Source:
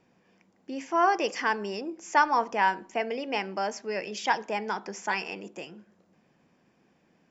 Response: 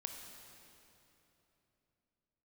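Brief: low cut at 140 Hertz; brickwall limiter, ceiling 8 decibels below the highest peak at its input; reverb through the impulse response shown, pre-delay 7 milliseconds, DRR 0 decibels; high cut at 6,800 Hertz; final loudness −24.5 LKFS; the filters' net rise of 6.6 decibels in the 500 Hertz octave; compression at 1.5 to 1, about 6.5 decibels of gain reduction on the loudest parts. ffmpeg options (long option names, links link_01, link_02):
-filter_complex "[0:a]highpass=140,lowpass=6800,equalizer=frequency=500:width_type=o:gain=8.5,acompressor=threshold=-33dB:ratio=1.5,alimiter=limit=-21.5dB:level=0:latency=1,asplit=2[link_01][link_02];[1:a]atrim=start_sample=2205,adelay=7[link_03];[link_02][link_03]afir=irnorm=-1:irlink=0,volume=2dB[link_04];[link_01][link_04]amix=inputs=2:normalize=0,volume=5.5dB"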